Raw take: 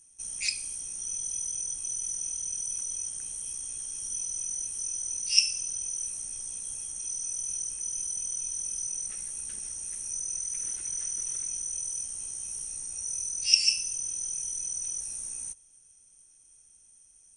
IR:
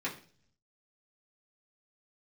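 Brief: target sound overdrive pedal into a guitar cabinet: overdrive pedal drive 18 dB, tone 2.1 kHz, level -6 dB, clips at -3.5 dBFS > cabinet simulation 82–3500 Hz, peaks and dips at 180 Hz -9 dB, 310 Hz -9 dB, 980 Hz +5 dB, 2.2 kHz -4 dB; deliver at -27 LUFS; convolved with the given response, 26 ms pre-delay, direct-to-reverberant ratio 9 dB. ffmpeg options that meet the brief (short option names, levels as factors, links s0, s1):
-filter_complex "[0:a]asplit=2[s0][s1];[1:a]atrim=start_sample=2205,adelay=26[s2];[s1][s2]afir=irnorm=-1:irlink=0,volume=0.211[s3];[s0][s3]amix=inputs=2:normalize=0,asplit=2[s4][s5];[s5]highpass=f=720:p=1,volume=7.94,asoftclip=type=tanh:threshold=0.668[s6];[s4][s6]amix=inputs=2:normalize=0,lowpass=f=2100:p=1,volume=0.501,highpass=82,equalizer=f=180:t=q:w=4:g=-9,equalizer=f=310:t=q:w=4:g=-9,equalizer=f=980:t=q:w=4:g=5,equalizer=f=2200:t=q:w=4:g=-4,lowpass=f=3500:w=0.5412,lowpass=f=3500:w=1.3066,volume=4.73"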